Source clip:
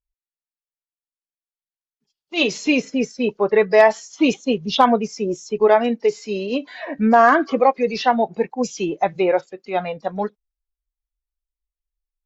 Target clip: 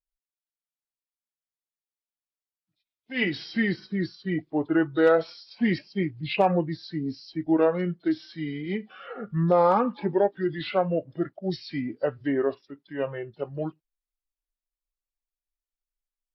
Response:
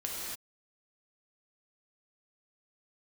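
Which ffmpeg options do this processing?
-af "asetrate=33075,aresample=44100,volume=-7.5dB"

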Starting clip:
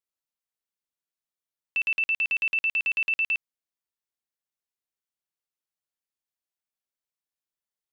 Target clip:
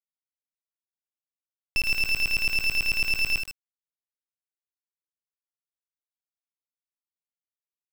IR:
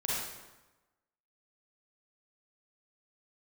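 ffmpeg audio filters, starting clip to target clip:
-filter_complex "[0:a]asplit=2[link_01][link_02];[link_02]adelay=76,lowpass=frequency=3900:poles=1,volume=-6dB,asplit=2[link_03][link_04];[link_04]adelay=76,lowpass=frequency=3900:poles=1,volume=0.34,asplit=2[link_05][link_06];[link_06]adelay=76,lowpass=frequency=3900:poles=1,volume=0.34,asplit=2[link_07][link_08];[link_08]adelay=76,lowpass=frequency=3900:poles=1,volume=0.34[link_09];[link_03][link_05][link_07][link_09]amix=inputs=4:normalize=0[link_10];[link_01][link_10]amix=inputs=2:normalize=0,acrusher=bits=4:dc=4:mix=0:aa=0.000001,volume=6dB"

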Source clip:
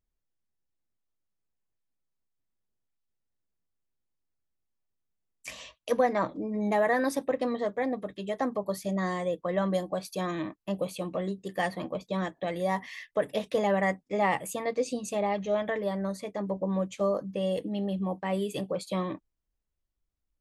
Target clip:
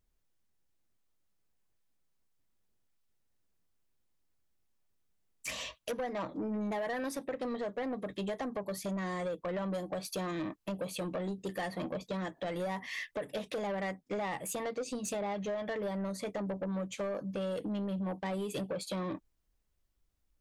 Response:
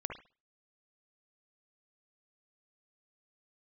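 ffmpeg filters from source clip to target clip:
-af "acompressor=threshold=-36dB:ratio=6,asoftclip=type=tanh:threshold=-36.5dB,volume=6dB"

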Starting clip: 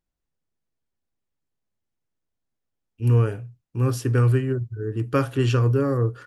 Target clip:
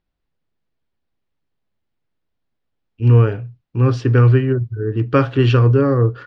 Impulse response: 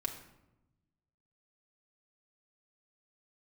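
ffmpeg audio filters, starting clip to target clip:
-af "lowpass=frequency=4400:width=0.5412,lowpass=frequency=4400:width=1.3066,volume=7dB"

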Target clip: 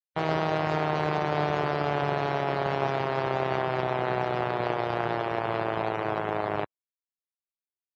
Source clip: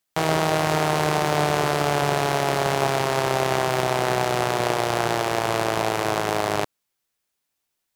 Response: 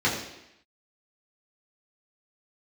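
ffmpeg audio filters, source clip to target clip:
-af "afftdn=noise_reduction=30:noise_floor=-31,volume=-5dB"

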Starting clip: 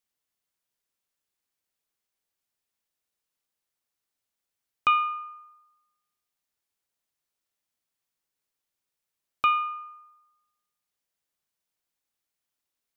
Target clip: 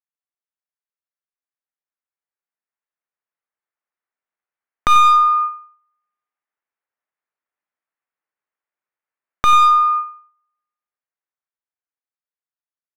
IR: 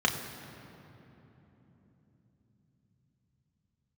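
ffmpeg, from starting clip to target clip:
-af "lowpass=frequency=2000:width=0.5412,lowpass=frequency=2000:width=1.3066,dynaudnorm=framelen=360:gausssize=17:maxgain=16.5dB,agate=range=-26dB:threshold=-39dB:ratio=16:detection=peak,highpass=frequency=930:poles=1,aeval=exprs='clip(val(0),-1,0.0794)':channel_layout=same,aecho=1:1:91|182|273:0.158|0.0539|0.0183,acompressor=threshold=-31dB:ratio=3,alimiter=level_in=20dB:limit=-1dB:release=50:level=0:latency=1,volume=-1dB"

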